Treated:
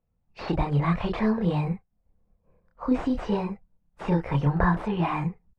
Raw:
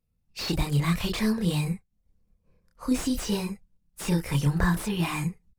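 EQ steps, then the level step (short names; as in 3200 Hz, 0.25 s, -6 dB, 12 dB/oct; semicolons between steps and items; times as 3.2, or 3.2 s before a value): LPF 2000 Hz 12 dB/oct; bell 740 Hz +9 dB 1.4 oct; 0.0 dB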